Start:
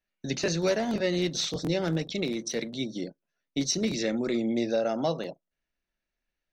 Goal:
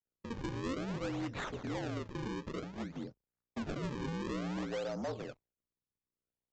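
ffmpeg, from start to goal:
-filter_complex "[0:a]aeval=exprs='val(0)+0.000708*(sin(2*PI*60*n/s)+sin(2*PI*2*60*n/s)/2+sin(2*PI*3*60*n/s)/3+sin(2*PI*4*60*n/s)/4+sin(2*PI*5*60*n/s)/5)':c=same,bandreject=f=50:t=h:w=6,bandreject=f=100:t=h:w=6,bandreject=f=150:t=h:w=6,acrossover=split=160[s0][s1];[s0]acompressor=threshold=0.00398:ratio=6[s2];[s2][s1]amix=inputs=2:normalize=0,aeval=exprs='sgn(val(0))*max(abs(val(0))-0.001,0)':c=same,afreqshift=-47,acrusher=samples=37:mix=1:aa=0.000001:lfo=1:lforange=59.2:lforate=0.55,lowpass=f=3600:p=1,aresample=16000,asoftclip=type=tanh:threshold=0.0447,aresample=44100,volume=0.501"

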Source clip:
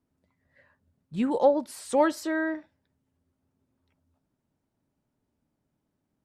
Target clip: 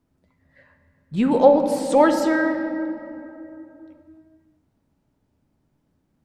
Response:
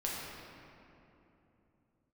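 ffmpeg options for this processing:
-filter_complex "[0:a]asplit=2[s0][s1];[1:a]atrim=start_sample=2205,lowpass=7800,lowshelf=f=120:g=8.5[s2];[s1][s2]afir=irnorm=-1:irlink=0,volume=0.473[s3];[s0][s3]amix=inputs=2:normalize=0,volume=1.58"

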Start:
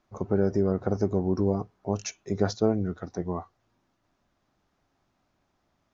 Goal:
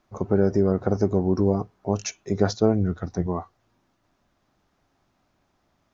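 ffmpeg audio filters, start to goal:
-filter_complex "[0:a]asettb=1/sr,asplit=3[s0][s1][s2];[s0]atrim=end=2.564[s3];[s1]atrim=start=2.56:end=3.27,asetpts=PTS-STARTPTS,afade=t=in:d=0.004:c=qsin,afade=t=out:st=0.706:d=0.004:c=qsin,asubboost=boost=8.5:cutoff=210[s4];[s2]atrim=start=3.266[s5];[s3][s4]acrossfade=d=0.004:c1=hsin:c2=qsin[s6];[s6][s5]acrossfade=d=0.004:c1=qsin:c2=hsin,volume=1.58"

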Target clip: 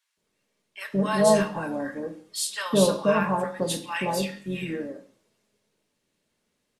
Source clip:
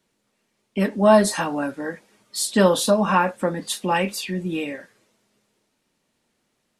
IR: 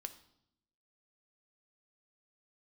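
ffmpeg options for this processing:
-filter_complex "[0:a]asplit=2[s0][s1];[s1]asetrate=33038,aresample=44100,atempo=1.33484,volume=0.224[s2];[s0][s2]amix=inputs=2:normalize=0,acrossover=split=1000[s3][s4];[s3]adelay=170[s5];[s5][s4]amix=inputs=2:normalize=0[s6];[1:a]atrim=start_sample=2205,afade=t=out:st=0.26:d=0.01,atrim=end_sample=11907[s7];[s6][s7]afir=irnorm=-1:irlink=0"

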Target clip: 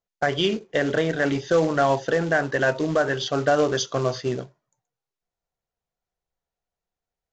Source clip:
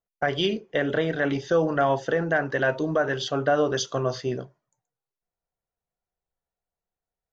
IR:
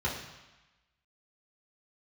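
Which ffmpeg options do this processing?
-af "acrusher=bits=4:mode=log:mix=0:aa=0.000001,aresample=16000,aresample=44100,volume=1.26"

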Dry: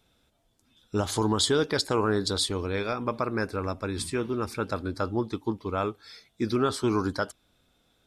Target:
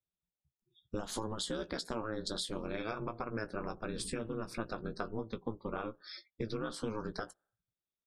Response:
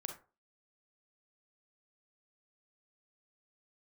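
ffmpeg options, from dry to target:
-filter_complex "[0:a]afftdn=nr=36:nf=-49,acompressor=threshold=0.0158:ratio=12,aeval=exprs='val(0)*sin(2*PI*110*n/s)':c=same,asplit=2[s0][s1];[s1]adelay=17,volume=0.299[s2];[s0][s2]amix=inputs=2:normalize=0,volume=1.58"

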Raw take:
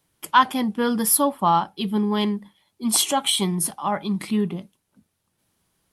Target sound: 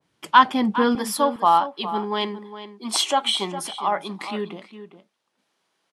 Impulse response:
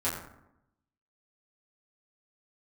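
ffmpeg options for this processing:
-filter_complex "[0:a]asetnsamples=n=441:p=0,asendcmd='0.95 highpass f 420',highpass=120,lowpass=5500,asplit=2[s0][s1];[s1]adelay=408.2,volume=0.251,highshelf=f=4000:g=-9.18[s2];[s0][s2]amix=inputs=2:normalize=0,adynamicequalizer=threshold=0.0251:dfrequency=1900:dqfactor=0.7:tfrequency=1900:tqfactor=0.7:attack=5:release=100:ratio=0.375:range=2:mode=cutabove:tftype=highshelf,volume=1.33"

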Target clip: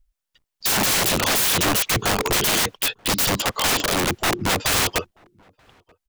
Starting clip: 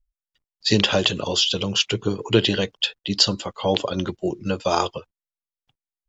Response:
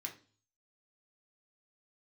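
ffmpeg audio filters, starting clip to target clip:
-filter_complex "[0:a]asettb=1/sr,asplit=3[s0][s1][s2];[s0]atrim=end=4.244[s3];[s1]atrim=start=4.24:end=4.89,asetpts=PTS-STARTPTS,afade=t=in:d=0.004:c=qsin,afade=t=out:st=0.646:d=0.004:c=qsin,highshelf=f=2100:g=-8.5[s4];[s2]atrim=start=4.886[s5];[s3][s4]acrossfade=d=0.004:c1=hsin:c2=qsin[s6];[s6][s5]acrossfade=d=0.004:c1=qsin:c2=hsin,dynaudnorm=f=110:g=13:m=1.58,alimiter=limit=0.501:level=0:latency=1:release=268,acontrast=82,aeval=exprs='(mod(7.08*val(0)+1,2)-1)/7.08':c=same,asplit=2[s7][s8];[s8]adelay=932.9,volume=0.0316,highshelf=f=4000:g=-21[s9];[s7][s9]amix=inputs=2:normalize=0,volume=1.33"

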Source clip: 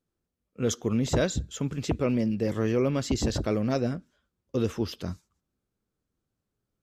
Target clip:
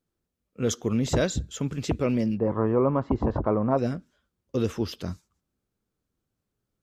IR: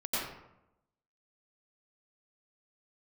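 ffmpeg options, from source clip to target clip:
-filter_complex "[0:a]asplit=3[s0][s1][s2];[s0]afade=t=out:st=2.37:d=0.02[s3];[s1]lowpass=f=1000:t=q:w=4.3,afade=t=in:st=2.37:d=0.02,afade=t=out:st=3.77:d=0.02[s4];[s2]afade=t=in:st=3.77:d=0.02[s5];[s3][s4][s5]amix=inputs=3:normalize=0,volume=1.12"

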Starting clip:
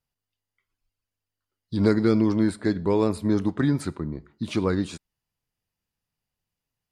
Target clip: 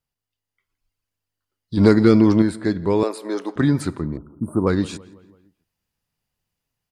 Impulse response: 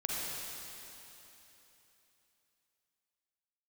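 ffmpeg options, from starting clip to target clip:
-filter_complex "[0:a]asplit=2[s0][s1];[s1]adelay=167,lowpass=f=3000:p=1,volume=0.0891,asplit=2[s2][s3];[s3]adelay=167,lowpass=f=3000:p=1,volume=0.53,asplit=2[s4][s5];[s5]adelay=167,lowpass=f=3000:p=1,volume=0.53,asplit=2[s6][s7];[s7]adelay=167,lowpass=f=3000:p=1,volume=0.53[s8];[s0][s2][s4][s6][s8]amix=inputs=5:normalize=0,asettb=1/sr,asplit=3[s9][s10][s11];[s9]atrim=end=1.774[s12];[s10]atrim=start=1.77:end=2.42,asetpts=PTS-STARTPTS,afade=t=in:d=0.004:c=qsin,afade=t=out:st=0.646:d=0.004:c=qsin,acontrast=25[s13];[s11]atrim=start=2.416[s14];[s12][s13]acrossfade=d=0.004:c1=hsin:c2=qsin[s15];[s15][s14]acrossfade=d=0.004:c1=qsin:c2=hsin,asettb=1/sr,asplit=3[s16][s17][s18];[s16]atrim=end=3.034[s19];[s17]atrim=start=3.03:end=3.56,asetpts=PTS-STARTPTS,afade=t=in:d=0.004:c=qsin,afade=t=out:st=0.526:d=0.004:c=qsin,highpass=f=370:w=0.5412,highpass=f=370:w=1.3066[s20];[s18]atrim=start=3.556[s21];[s19][s20]acrossfade=d=0.004:c1=hsin:c2=qsin[s22];[s22][s21]acrossfade=d=0.004:c1=qsin:c2=hsin,dynaudnorm=f=120:g=13:m=1.78,asettb=1/sr,asplit=3[s23][s24][s25];[s23]atrim=end=4.174[s26];[s24]atrim=start=4.17:end=4.67,asetpts=PTS-STARTPTS,afade=t=in:d=0.004:c=qsin,afade=t=out:st=0.496:d=0.004:c=qsin,asuperstop=centerf=3600:order=20:qfactor=0.5[s27];[s25]atrim=start=4.666[s28];[s26][s27]acrossfade=d=0.004:c1=hsin:c2=qsin[s29];[s29][s28]acrossfade=d=0.004:c1=qsin:c2=hsin"

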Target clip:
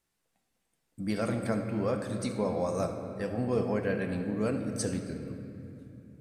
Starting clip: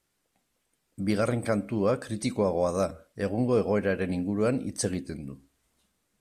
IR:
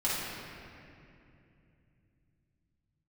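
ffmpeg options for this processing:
-filter_complex "[0:a]asplit=2[s0][s1];[1:a]atrim=start_sample=2205,asetrate=39249,aresample=44100[s2];[s1][s2]afir=irnorm=-1:irlink=0,volume=0.237[s3];[s0][s3]amix=inputs=2:normalize=0,volume=0.473"

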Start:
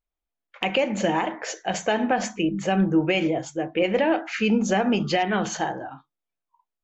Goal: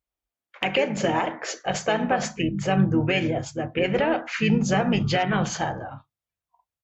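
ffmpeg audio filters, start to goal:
-filter_complex "[0:a]highpass=f=43:w=0.5412,highpass=f=43:w=1.3066,asplit=2[s0][s1];[s1]asetrate=33038,aresample=44100,atempo=1.33484,volume=0.398[s2];[s0][s2]amix=inputs=2:normalize=0,asubboost=boost=8:cutoff=100"

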